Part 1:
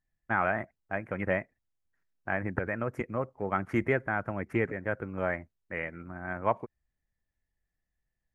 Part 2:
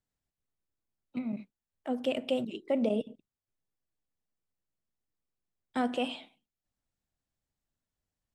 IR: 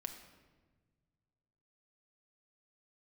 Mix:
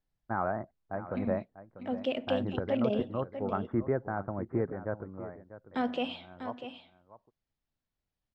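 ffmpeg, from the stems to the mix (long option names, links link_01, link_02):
-filter_complex "[0:a]lowpass=frequency=1200:width=0.5412,lowpass=frequency=1200:width=1.3066,volume=-1.5dB,afade=type=out:start_time=4.9:duration=0.38:silence=0.251189,asplit=2[link_01][link_02];[link_02]volume=-14dB[link_03];[1:a]volume=-1dB,asplit=2[link_04][link_05];[link_05]volume=-10dB[link_06];[link_03][link_06]amix=inputs=2:normalize=0,aecho=0:1:644:1[link_07];[link_01][link_04][link_07]amix=inputs=3:normalize=0,lowpass=frequency=5200:width=0.5412,lowpass=frequency=5200:width=1.3066"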